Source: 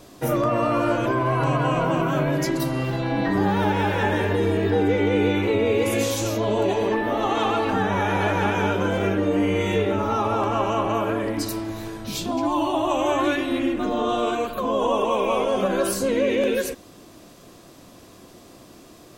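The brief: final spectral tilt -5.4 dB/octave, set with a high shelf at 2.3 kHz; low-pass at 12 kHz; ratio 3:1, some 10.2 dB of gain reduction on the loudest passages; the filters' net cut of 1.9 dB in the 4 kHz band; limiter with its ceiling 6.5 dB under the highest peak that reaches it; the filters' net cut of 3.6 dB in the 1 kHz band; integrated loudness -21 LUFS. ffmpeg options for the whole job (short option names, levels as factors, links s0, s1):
-af "lowpass=12000,equalizer=f=1000:t=o:g=-5,highshelf=f=2300:g=3.5,equalizer=f=4000:t=o:g=-5.5,acompressor=threshold=0.0251:ratio=3,volume=5.01,alimiter=limit=0.237:level=0:latency=1"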